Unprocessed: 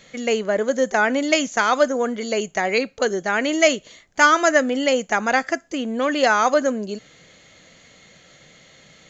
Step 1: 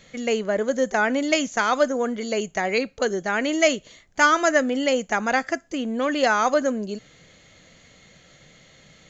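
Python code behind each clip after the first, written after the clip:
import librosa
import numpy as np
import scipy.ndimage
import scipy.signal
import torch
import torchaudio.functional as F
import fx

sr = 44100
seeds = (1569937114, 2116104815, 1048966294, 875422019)

y = fx.low_shelf(x, sr, hz=130.0, db=8.5)
y = F.gain(torch.from_numpy(y), -3.0).numpy()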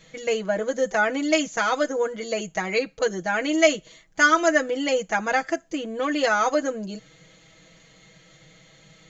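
y = x + 0.9 * np.pad(x, (int(6.2 * sr / 1000.0), 0))[:len(x)]
y = F.gain(torch.from_numpy(y), -3.5).numpy()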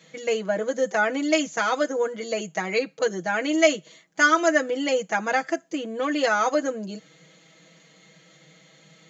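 y = scipy.signal.sosfilt(scipy.signal.ellip(4, 1.0, 40, 150.0, 'highpass', fs=sr, output='sos'), x)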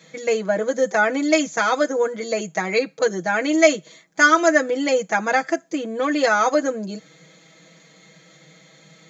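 y = fx.notch(x, sr, hz=2900.0, q=7.8)
y = F.gain(torch.from_numpy(y), 4.0).numpy()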